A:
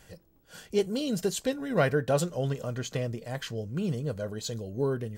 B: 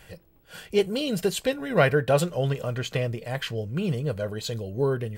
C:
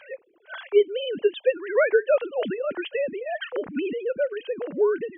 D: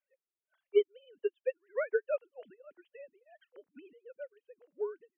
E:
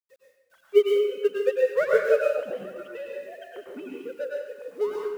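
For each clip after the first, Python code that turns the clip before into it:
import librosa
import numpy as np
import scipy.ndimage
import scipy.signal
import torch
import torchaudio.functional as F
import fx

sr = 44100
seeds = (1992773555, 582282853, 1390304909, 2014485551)

y1 = fx.graphic_eq_15(x, sr, hz=(250, 2500, 6300), db=(-5, 5, -7))
y1 = F.gain(torch.from_numpy(y1), 5.0).numpy()
y2 = fx.sine_speech(y1, sr)
y2 = fx.band_squash(y2, sr, depth_pct=40)
y2 = F.gain(torch.from_numpy(y2), 1.5).numpy()
y3 = fx.upward_expand(y2, sr, threshold_db=-40.0, expansion=2.5)
y3 = F.gain(torch.from_numpy(y3), -6.5).numpy()
y4 = fx.law_mismatch(y3, sr, coded='mu')
y4 = fx.rev_plate(y4, sr, seeds[0], rt60_s=0.92, hf_ratio=0.95, predelay_ms=90, drr_db=-2.5)
y4 = F.gain(torch.from_numpy(y4), 7.0).numpy()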